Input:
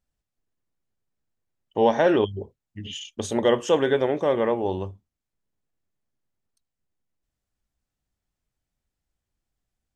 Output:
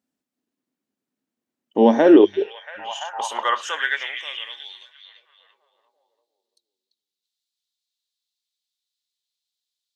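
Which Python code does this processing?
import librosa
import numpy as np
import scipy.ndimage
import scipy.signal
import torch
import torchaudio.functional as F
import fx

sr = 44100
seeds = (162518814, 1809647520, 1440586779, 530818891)

y = fx.echo_stepped(x, sr, ms=341, hz=3400.0, octaves=-0.7, feedback_pct=70, wet_db=-5)
y = fx.filter_sweep_highpass(y, sr, from_hz=250.0, to_hz=3900.0, start_s=1.94, end_s=4.68, q=4.7)
y = F.gain(torch.from_numpy(y), 1.0).numpy()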